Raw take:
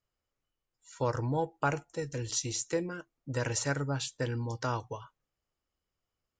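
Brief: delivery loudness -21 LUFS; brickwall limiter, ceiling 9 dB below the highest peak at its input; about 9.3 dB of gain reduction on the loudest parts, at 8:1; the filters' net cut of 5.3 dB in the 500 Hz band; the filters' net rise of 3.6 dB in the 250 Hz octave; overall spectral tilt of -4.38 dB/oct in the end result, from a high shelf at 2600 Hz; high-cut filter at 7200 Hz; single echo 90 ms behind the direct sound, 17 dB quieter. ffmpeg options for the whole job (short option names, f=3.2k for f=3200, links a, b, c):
-af "lowpass=7.2k,equalizer=f=250:t=o:g=7.5,equalizer=f=500:t=o:g=-8.5,highshelf=f=2.6k:g=5,acompressor=threshold=-35dB:ratio=8,alimiter=level_in=6dB:limit=-24dB:level=0:latency=1,volume=-6dB,aecho=1:1:90:0.141,volume=20dB"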